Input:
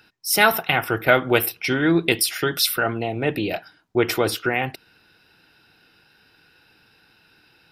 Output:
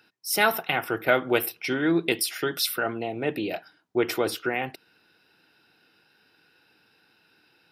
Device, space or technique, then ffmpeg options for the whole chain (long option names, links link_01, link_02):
filter by subtraction: -filter_complex "[0:a]asplit=2[link_01][link_02];[link_02]lowpass=300,volume=-1[link_03];[link_01][link_03]amix=inputs=2:normalize=0,volume=-6dB"